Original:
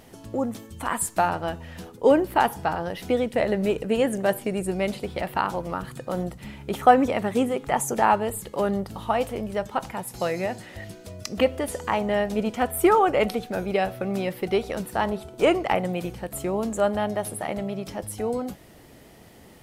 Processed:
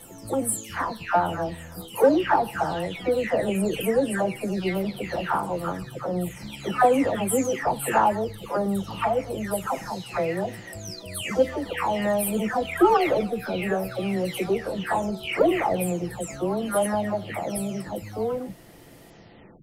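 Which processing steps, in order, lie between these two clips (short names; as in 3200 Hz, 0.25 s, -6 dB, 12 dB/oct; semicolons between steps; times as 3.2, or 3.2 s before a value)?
spectral delay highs early, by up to 0.522 s; in parallel at -11 dB: soft clip -23.5 dBFS, distortion -8 dB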